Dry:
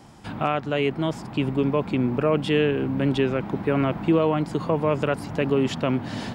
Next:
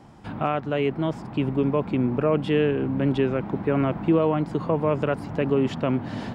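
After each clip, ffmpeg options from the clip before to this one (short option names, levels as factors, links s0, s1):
-af "highshelf=f=3100:g=-11"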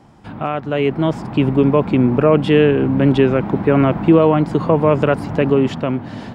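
-af "dynaudnorm=f=120:g=13:m=2.82,volume=1.19"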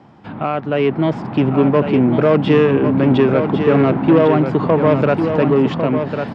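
-filter_complex "[0:a]aeval=exprs='0.891*(cos(1*acos(clip(val(0)/0.891,-1,1)))-cos(1*PI/2))+0.1*(cos(5*acos(clip(val(0)/0.891,-1,1)))-cos(5*PI/2))':c=same,highpass=110,lowpass=3900,asplit=2[s0][s1];[s1]aecho=0:1:1100:0.447[s2];[s0][s2]amix=inputs=2:normalize=0,volume=0.841"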